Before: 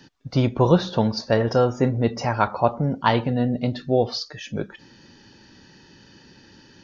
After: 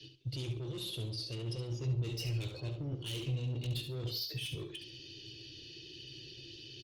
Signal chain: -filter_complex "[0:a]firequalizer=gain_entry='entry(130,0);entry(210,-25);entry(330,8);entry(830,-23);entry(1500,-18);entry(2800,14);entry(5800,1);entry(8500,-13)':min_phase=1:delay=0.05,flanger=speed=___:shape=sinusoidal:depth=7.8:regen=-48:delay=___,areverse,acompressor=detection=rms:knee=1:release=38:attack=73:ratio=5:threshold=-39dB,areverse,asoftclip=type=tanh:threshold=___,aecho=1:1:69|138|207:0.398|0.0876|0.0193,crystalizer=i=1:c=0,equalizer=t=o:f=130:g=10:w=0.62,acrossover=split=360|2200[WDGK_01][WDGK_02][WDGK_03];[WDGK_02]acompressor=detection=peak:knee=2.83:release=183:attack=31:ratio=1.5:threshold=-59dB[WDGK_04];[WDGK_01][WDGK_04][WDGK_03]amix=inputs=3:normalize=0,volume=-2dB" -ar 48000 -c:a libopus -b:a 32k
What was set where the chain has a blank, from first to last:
0.38, 9.7, -35.5dB